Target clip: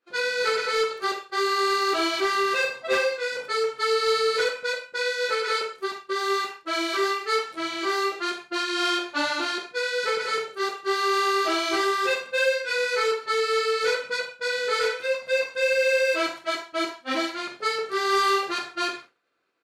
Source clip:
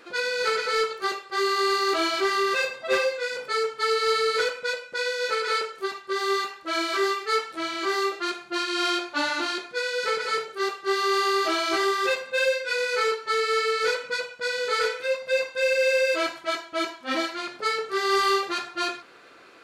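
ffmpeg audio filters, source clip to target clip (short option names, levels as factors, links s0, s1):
-af "agate=range=0.0224:threshold=0.0178:ratio=3:detection=peak,aecho=1:1:45|69:0.282|0.133"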